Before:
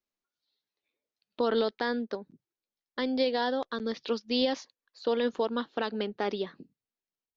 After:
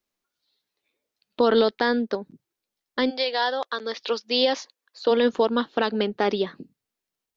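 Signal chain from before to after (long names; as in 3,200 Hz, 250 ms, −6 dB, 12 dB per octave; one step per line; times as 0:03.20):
0:03.09–0:05.10: high-pass filter 850 Hz → 260 Hz 12 dB per octave
level +8 dB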